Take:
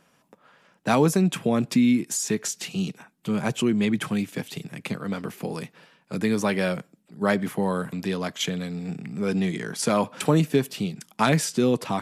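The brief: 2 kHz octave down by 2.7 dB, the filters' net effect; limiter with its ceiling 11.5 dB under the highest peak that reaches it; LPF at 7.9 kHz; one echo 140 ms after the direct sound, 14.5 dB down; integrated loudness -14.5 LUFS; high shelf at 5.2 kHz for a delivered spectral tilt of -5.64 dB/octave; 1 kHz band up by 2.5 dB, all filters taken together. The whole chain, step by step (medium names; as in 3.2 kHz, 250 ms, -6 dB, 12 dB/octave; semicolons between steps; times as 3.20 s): low-pass 7.9 kHz; peaking EQ 1 kHz +4.5 dB; peaking EQ 2 kHz -4.5 dB; treble shelf 5.2 kHz -5 dB; peak limiter -17 dBFS; delay 140 ms -14.5 dB; trim +14 dB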